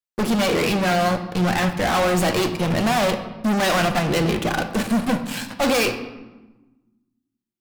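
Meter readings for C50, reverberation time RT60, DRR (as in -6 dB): 10.0 dB, 1.2 s, 6.5 dB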